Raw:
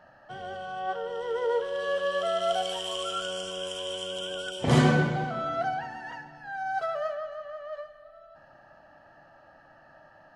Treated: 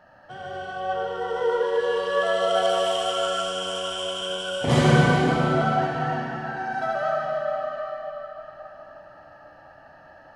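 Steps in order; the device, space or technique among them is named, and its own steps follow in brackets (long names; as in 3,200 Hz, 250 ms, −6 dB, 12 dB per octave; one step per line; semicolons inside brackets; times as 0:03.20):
cathedral (convolution reverb RT60 4.2 s, pre-delay 57 ms, DRR −3.5 dB)
level +1 dB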